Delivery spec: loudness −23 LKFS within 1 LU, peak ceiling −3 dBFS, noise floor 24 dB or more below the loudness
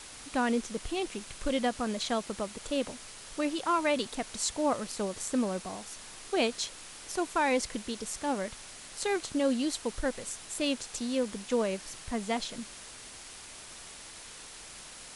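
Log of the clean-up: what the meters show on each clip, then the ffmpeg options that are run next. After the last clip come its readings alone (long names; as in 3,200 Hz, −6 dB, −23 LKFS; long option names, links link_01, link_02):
background noise floor −48 dBFS; target noise floor −57 dBFS; integrated loudness −32.5 LKFS; sample peak −15.5 dBFS; target loudness −23.0 LKFS
→ -af "afftdn=noise_reduction=9:noise_floor=-48"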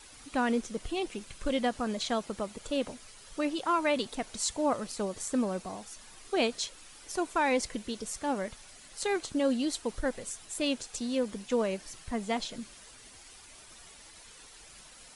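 background noise floor −53 dBFS; target noise floor −57 dBFS
→ -af "afftdn=noise_reduction=6:noise_floor=-53"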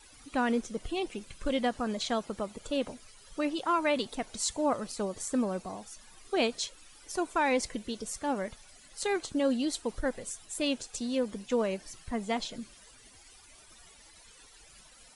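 background noise floor −56 dBFS; target noise floor −57 dBFS
→ -af "afftdn=noise_reduction=6:noise_floor=-56"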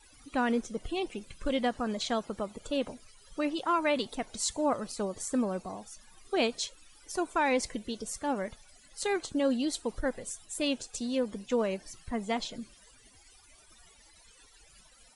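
background noise floor −59 dBFS; integrated loudness −32.5 LKFS; sample peak −16.5 dBFS; target loudness −23.0 LKFS
→ -af "volume=9.5dB"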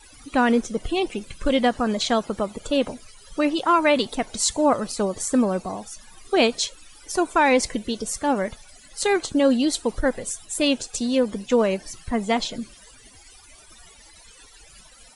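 integrated loudness −23.0 LKFS; sample peak −7.0 dBFS; background noise floor −50 dBFS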